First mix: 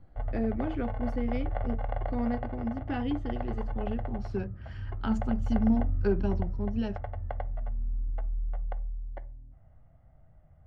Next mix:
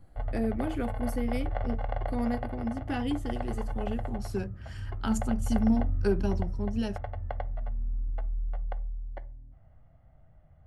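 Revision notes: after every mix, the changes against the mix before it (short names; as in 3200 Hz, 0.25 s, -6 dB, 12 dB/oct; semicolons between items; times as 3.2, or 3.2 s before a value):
master: remove air absorption 220 m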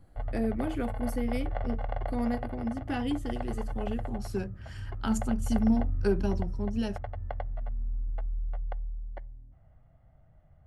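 background: send -11.5 dB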